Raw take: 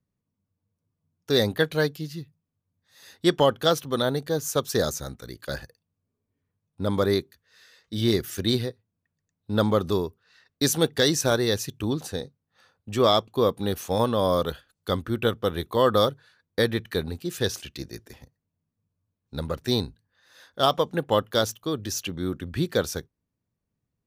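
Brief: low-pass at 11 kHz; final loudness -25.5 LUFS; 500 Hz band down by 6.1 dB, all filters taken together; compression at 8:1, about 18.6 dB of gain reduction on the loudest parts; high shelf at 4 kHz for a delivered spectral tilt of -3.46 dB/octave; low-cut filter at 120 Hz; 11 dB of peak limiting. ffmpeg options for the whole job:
-af "highpass=120,lowpass=11000,equalizer=f=500:t=o:g=-7.5,highshelf=f=4000:g=7,acompressor=threshold=0.0141:ratio=8,volume=8.91,alimiter=limit=0.251:level=0:latency=1"

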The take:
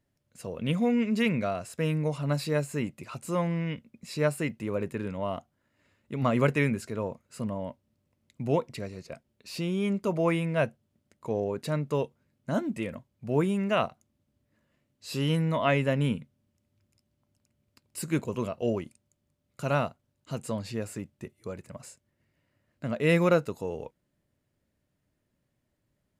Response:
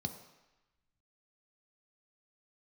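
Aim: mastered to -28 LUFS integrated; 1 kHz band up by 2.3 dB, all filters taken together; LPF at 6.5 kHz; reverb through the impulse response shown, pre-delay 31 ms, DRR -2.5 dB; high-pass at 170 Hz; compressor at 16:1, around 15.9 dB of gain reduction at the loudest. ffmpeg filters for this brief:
-filter_complex "[0:a]highpass=170,lowpass=6500,equalizer=f=1000:t=o:g=3,acompressor=threshold=0.02:ratio=16,asplit=2[s0][s1];[1:a]atrim=start_sample=2205,adelay=31[s2];[s1][s2]afir=irnorm=-1:irlink=0,volume=1.33[s3];[s0][s3]amix=inputs=2:normalize=0,volume=1.41"

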